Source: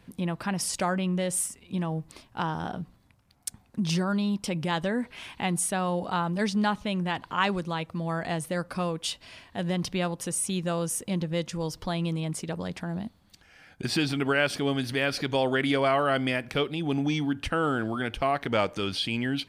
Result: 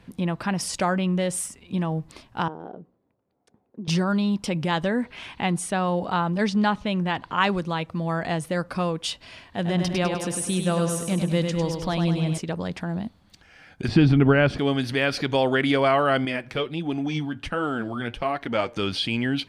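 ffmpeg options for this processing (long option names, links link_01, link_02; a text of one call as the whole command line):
ffmpeg -i in.wav -filter_complex "[0:a]asettb=1/sr,asplit=3[link_01][link_02][link_03];[link_01]atrim=end=2.484[link_04];[link_02]atrim=start=2.48:end=3.88,asetpts=PTS-STARTPTS,afade=type=in:duration=0.004:curve=qsin,afade=type=out:start_time=1.396:duration=0.004:curve=qsin,bandpass=frequency=430:width_type=q:width=2.4[link_05];[link_03]atrim=start=3.876[link_06];[link_04][link_05]acrossfade=duration=0.004:curve1=hsin:curve2=qsin[link_07];[link_07][link_06]acrossfade=duration=0.004:curve1=qsin:curve2=hsin,asettb=1/sr,asplit=3[link_08][link_09][link_10];[link_08]atrim=end=5.034[link_11];[link_09]atrim=start=5.03:end=7.41,asetpts=PTS-STARTPTS,afade=type=in:duration=0.004:curve=qsin,afade=type=out:start_time=2.376:duration=0.004:curve=qsin,highshelf=frequency=9900:gain=-7.5[link_12];[link_10]atrim=start=7.406[link_13];[link_11][link_12]acrossfade=duration=0.004:curve1=hsin:curve2=qsin[link_14];[link_14][link_13]acrossfade=duration=0.004:curve1=qsin:curve2=hsin,asettb=1/sr,asplit=3[link_15][link_16][link_17];[link_15]atrim=end=9.444[link_18];[link_16]atrim=start=9.44:end=12.38,asetpts=PTS-STARTPTS,afade=type=in:duration=0.004:curve=qsin,afade=type=out:start_time=2.936:duration=0.004:curve=qsin,aecho=1:1:101|202|303|404|505|606|707:0.531|0.287|0.155|0.0836|0.0451|0.0244|0.0132,atrim=end_sample=129654[link_19];[link_17]atrim=start=12.376[link_20];[link_18][link_19]acrossfade=duration=0.004:curve1=hsin:curve2=qsin[link_21];[link_21][link_20]acrossfade=duration=0.004:curve1=qsin:curve2=hsin,asettb=1/sr,asplit=3[link_22][link_23][link_24];[link_22]atrim=end=13.884[link_25];[link_23]atrim=start=13.88:end=14.59,asetpts=PTS-STARTPTS,afade=type=in:duration=0.004:curve=qsin,afade=type=out:start_time=0.706:duration=0.004:curve=qsin,aemphasis=mode=reproduction:type=riaa[link_26];[link_24]atrim=start=14.586[link_27];[link_25][link_26]acrossfade=duration=0.004:curve1=hsin:curve2=qsin[link_28];[link_28][link_27]acrossfade=duration=0.004:curve1=qsin:curve2=hsin,asettb=1/sr,asplit=3[link_29][link_30][link_31];[link_29]atrim=end=16.254[link_32];[link_30]atrim=start=16.25:end=18.77,asetpts=PTS-STARTPTS,afade=type=in:duration=0.004:curve=qsin,afade=type=out:start_time=2.516:duration=0.004:curve=qsin,flanger=delay=2.8:depth=6:regen=43:speed=1.4:shape=sinusoidal[link_33];[link_31]atrim=start=18.766[link_34];[link_32][link_33]acrossfade=duration=0.004:curve1=hsin:curve2=qsin[link_35];[link_35][link_34]acrossfade=duration=0.004:curve1=qsin:curve2=hsin,highshelf=frequency=9400:gain=-11,volume=4dB" out.wav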